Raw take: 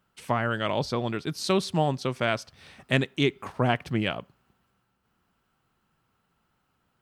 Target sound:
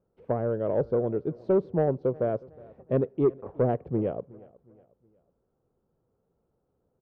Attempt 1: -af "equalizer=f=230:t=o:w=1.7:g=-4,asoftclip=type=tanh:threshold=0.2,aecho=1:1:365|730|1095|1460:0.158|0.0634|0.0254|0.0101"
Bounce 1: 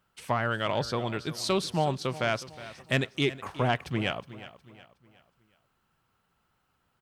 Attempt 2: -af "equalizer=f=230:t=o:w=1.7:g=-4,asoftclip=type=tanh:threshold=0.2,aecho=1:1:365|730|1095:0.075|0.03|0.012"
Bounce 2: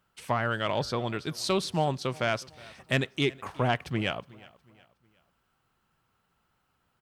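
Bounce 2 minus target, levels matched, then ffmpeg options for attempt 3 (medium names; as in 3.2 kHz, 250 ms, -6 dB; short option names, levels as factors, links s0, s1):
500 Hz band -4.0 dB
-af "lowpass=f=480:t=q:w=3.1,equalizer=f=230:t=o:w=1.7:g=-4,asoftclip=type=tanh:threshold=0.2,aecho=1:1:365|730|1095:0.075|0.03|0.012"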